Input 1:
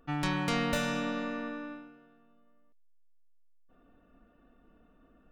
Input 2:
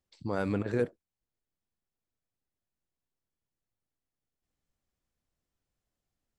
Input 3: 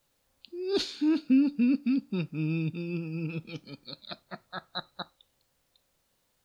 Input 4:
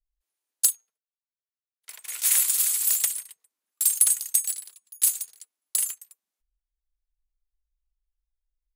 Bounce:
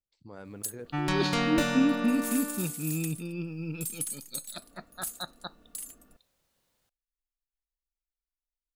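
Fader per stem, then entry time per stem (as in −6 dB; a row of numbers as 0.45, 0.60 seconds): +2.5, −14.0, −2.0, −15.0 decibels; 0.85, 0.00, 0.45, 0.00 seconds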